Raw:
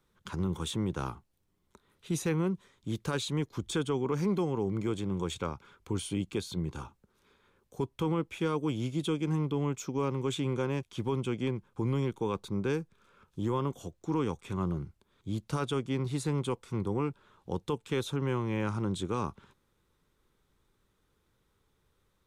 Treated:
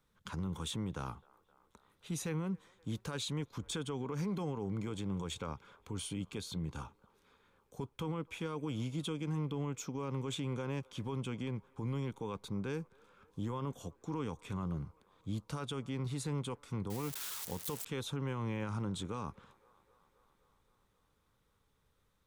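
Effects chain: 16.90–17.85 s: zero-crossing glitches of -26 dBFS; peaking EQ 360 Hz -10 dB 0.21 oct; peak limiter -27 dBFS, peak gain reduction 7 dB; feedback echo behind a band-pass 261 ms, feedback 74%, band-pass 930 Hz, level -23.5 dB; trim -2.5 dB

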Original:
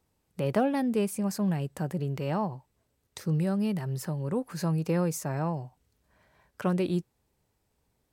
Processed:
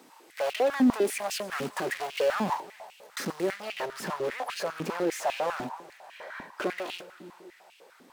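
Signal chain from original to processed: block-companded coder 5-bit; saturation -26.5 dBFS, distortion -13 dB; overdrive pedal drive 29 dB, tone 5.4 kHz, clips at -26.5 dBFS, from 3.51 s tone 2.7 kHz; multi-head delay 106 ms, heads first and third, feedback 55%, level -20.5 dB; step-sequenced high-pass 10 Hz 250–2700 Hz

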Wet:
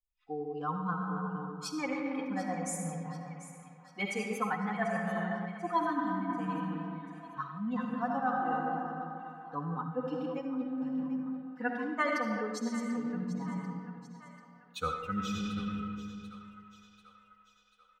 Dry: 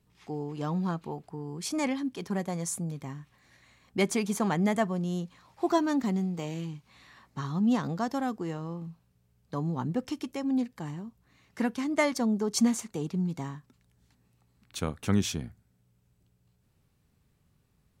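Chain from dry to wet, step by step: expander on every frequency bin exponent 2; treble shelf 7 kHz -8 dB; hum notches 60/120/180/240 Hz; comb 4 ms, depth 99%; algorithmic reverb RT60 2 s, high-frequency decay 0.55×, pre-delay 30 ms, DRR 1.5 dB; reverse; compression 6:1, threshold -38 dBFS, peak gain reduction 19.5 dB; reverse; peaking EQ 1.3 kHz +12.5 dB 1.7 oct; on a send: two-band feedback delay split 640 Hz, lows 203 ms, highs 740 ms, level -14 dB; on the sum: trim +3.5 dB

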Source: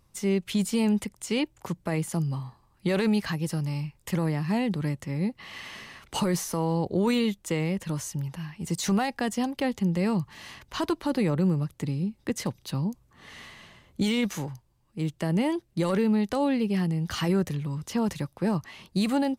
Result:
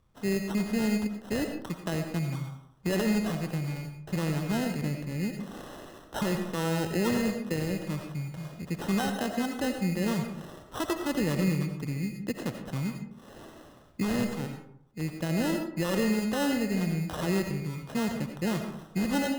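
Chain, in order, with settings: elliptic low-pass 5.3 kHz; sample-rate reducer 2.3 kHz, jitter 0%; reverberation RT60 0.65 s, pre-delay 45 ms, DRR 5 dB; trim -2.5 dB

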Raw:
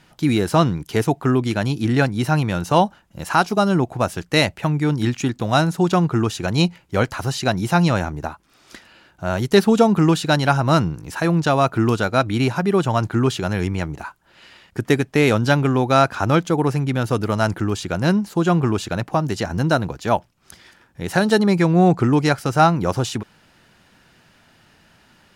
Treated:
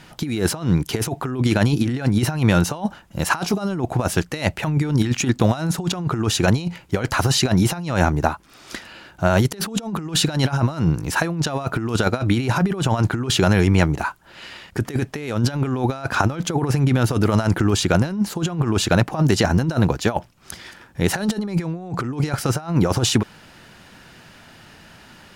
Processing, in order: compressor with a negative ratio -22 dBFS, ratio -0.5; trim +3.5 dB

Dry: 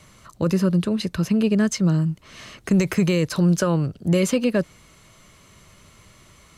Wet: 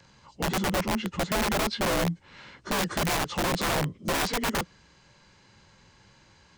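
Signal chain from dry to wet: frequency axis rescaled in octaves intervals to 87%; integer overflow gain 17.5 dB; trim -4 dB

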